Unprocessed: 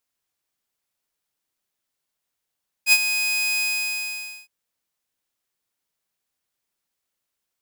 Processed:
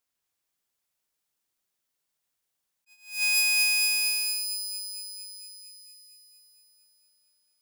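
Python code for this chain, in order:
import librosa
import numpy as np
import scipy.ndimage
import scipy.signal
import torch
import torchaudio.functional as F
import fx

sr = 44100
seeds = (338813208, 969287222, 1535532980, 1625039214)

p1 = fx.low_shelf(x, sr, hz=290.0, db=-12.0, at=(3.02, 3.91))
p2 = p1 + fx.echo_wet_highpass(p1, sr, ms=229, feedback_pct=70, hz=4800.0, wet_db=-4, dry=0)
p3 = fx.attack_slew(p2, sr, db_per_s=150.0)
y = p3 * librosa.db_to_amplitude(-2.0)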